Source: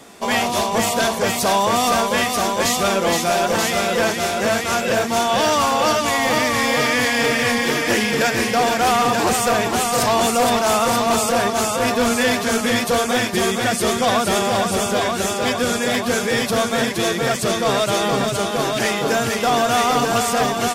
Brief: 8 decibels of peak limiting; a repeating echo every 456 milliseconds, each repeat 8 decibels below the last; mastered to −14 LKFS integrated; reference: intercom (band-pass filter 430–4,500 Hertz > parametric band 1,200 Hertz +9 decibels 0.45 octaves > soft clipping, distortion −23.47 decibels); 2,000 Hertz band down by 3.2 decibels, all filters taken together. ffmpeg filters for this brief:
ffmpeg -i in.wav -af "equalizer=frequency=2000:width_type=o:gain=-6,alimiter=limit=-18dB:level=0:latency=1,highpass=430,lowpass=4500,equalizer=frequency=1200:width_type=o:width=0.45:gain=9,aecho=1:1:456|912|1368|1824|2280:0.398|0.159|0.0637|0.0255|0.0102,asoftclip=threshold=-14dB,volume=11dB" out.wav

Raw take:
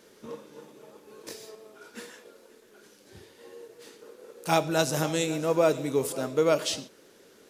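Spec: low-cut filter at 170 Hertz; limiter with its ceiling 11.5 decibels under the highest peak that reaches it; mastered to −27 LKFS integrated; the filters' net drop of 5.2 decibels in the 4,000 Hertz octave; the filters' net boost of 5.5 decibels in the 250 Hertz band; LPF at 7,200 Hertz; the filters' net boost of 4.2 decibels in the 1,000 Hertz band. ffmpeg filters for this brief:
ffmpeg -i in.wav -af "highpass=170,lowpass=7200,equalizer=frequency=250:width_type=o:gain=8.5,equalizer=frequency=1000:width_type=o:gain=5.5,equalizer=frequency=4000:width_type=o:gain=-6.5,volume=2.5dB,alimiter=limit=-16dB:level=0:latency=1" out.wav

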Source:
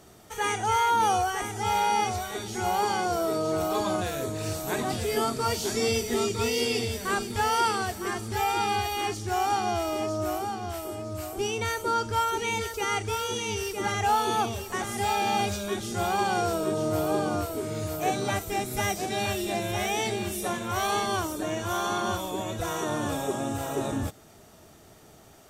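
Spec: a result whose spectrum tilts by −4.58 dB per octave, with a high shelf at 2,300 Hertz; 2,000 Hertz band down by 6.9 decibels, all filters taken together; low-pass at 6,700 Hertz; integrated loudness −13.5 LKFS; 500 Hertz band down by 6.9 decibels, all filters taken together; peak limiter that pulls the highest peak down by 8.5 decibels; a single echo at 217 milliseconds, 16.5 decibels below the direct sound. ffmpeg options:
ffmpeg -i in.wav -af "lowpass=6700,equalizer=frequency=500:width_type=o:gain=-9,equalizer=frequency=2000:width_type=o:gain=-7,highshelf=frequency=2300:gain=-3,alimiter=level_in=2dB:limit=-24dB:level=0:latency=1,volume=-2dB,aecho=1:1:217:0.15,volume=21.5dB" out.wav

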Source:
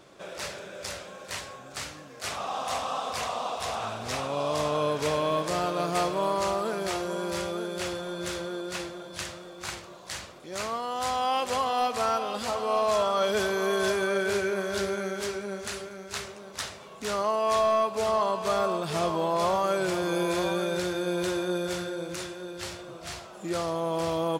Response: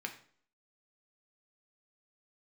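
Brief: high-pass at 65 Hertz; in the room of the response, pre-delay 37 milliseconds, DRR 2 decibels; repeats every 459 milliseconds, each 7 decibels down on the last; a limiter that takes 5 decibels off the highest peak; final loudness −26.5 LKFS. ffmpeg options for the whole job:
-filter_complex "[0:a]highpass=65,alimiter=limit=-20.5dB:level=0:latency=1,aecho=1:1:459|918|1377|1836|2295:0.447|0.201|0.0905|0.0407|0.0183,asplit=2[link_01][link_02];[1:a]atrim=start_sample=2205,adelay=37[link_03];[link_02][link_03]afir=irnorm=-1:irlink=0,volume=-3dB[link_04];[link_01][link_04]amix=inputs=2:normalize=0,volume=2.5dB"

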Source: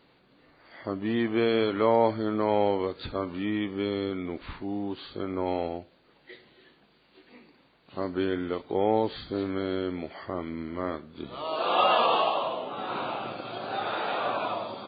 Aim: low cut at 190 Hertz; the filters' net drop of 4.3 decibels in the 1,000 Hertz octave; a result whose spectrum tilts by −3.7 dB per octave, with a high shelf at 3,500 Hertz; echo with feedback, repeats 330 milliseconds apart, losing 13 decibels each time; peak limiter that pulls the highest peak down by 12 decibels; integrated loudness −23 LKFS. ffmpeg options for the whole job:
ffmpeg -i in.wav -af "highpass=190,equalizer=frequency=1000:width_type=o:gain=-5,highshelf=frequency=3500:gain=-8,alimiter=level_in=1dB:limit=-24dB:level=0:latency=1,volume=-1dB,aecho=1:1:330|660|990:0.224|0.0493|0.0108,volume=12.5dB" out.wav

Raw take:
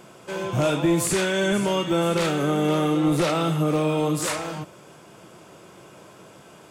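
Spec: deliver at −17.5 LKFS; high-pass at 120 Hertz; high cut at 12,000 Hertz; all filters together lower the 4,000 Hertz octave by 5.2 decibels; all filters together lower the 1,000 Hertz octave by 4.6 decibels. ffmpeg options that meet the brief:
ffmpeg -i in.wav -af "highpass=120,lowpass=12000,equalizer=frequency=1000:width_type=o:gain=-6,equalizer=frequency=4000:width_type=o:gain=-6.5,volume=7dB" out.wav

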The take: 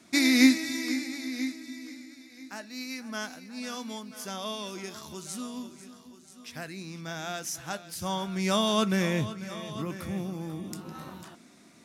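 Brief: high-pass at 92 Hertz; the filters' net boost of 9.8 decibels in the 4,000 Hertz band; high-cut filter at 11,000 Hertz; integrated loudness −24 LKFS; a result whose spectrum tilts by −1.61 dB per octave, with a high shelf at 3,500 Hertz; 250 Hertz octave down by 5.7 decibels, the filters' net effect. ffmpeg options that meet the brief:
ffmpeg -i in.wav -af "highpass=92,lowpass=11000,equalizer=frequency=250:width_type=o:gain=-6.5,highshelf=frequency=3500:gain=5.5,equalizer=frequency=4000:width_type=o:gain=8,volume=2.5dB" out.wav

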